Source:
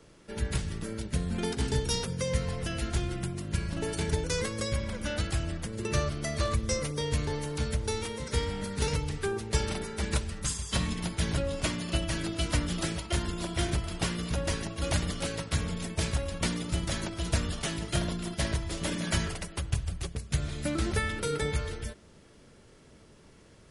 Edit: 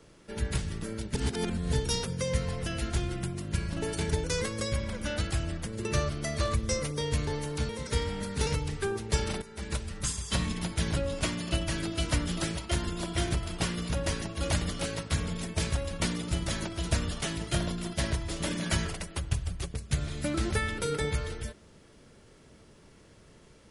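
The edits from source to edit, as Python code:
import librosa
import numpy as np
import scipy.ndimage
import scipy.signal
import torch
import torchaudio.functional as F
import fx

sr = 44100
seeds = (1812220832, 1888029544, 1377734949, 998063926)

y = fx.edit(x, sr, fx.reverse_span(start_s=1.15, length_s=0.58),
    fx.cut(start_s=7.69, length_s=0.41),
    fx.fade_in_from(start_s=9.83, length_s=0.62, floor_db=-12.5), tone=tone)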